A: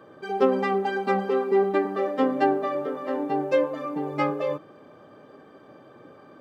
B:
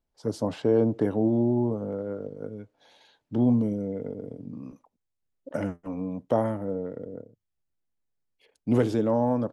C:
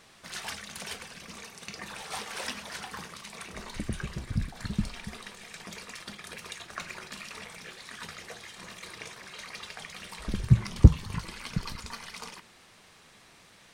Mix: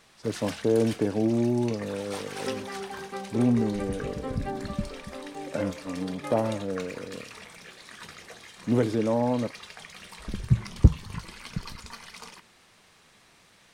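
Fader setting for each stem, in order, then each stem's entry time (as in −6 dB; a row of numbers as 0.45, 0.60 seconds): −13.0, −1.0, −2.0 decibels; 2.05, 0.00, 0.00 seconds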